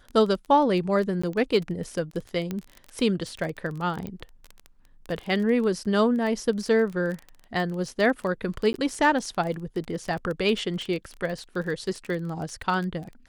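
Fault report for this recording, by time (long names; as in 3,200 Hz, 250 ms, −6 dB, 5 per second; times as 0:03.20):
surface crackle 20 per second −30 dBFS
0:01.22–0:01.24: drop-out 15 ms
0:02.51: click −17 dBFS
0:04.07: click −22 dBFS
0:08.73–0:08.74: drop-out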